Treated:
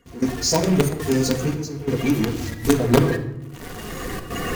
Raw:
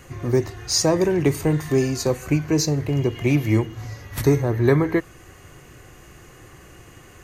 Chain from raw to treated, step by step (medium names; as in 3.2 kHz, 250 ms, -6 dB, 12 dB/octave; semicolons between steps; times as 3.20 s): coarse spectral quantiser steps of 30 dB; recorder AGC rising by 8.2 dB/s; plain phase-vocoder stretch 0.63×; in parallel at -6 dB: companded quantiser 2-bit; on the sum: trance gate "..xxxxxx.xxxxx." 136 bpm -12 dB; simulated room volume 2900 m³, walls furnished, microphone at 1.7 m